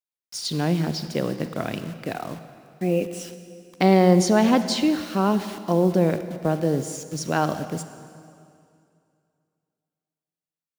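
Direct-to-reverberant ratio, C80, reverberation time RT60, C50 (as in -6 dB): 10.5 dB, 11.5 dB, 2.4 s, 11.0 dB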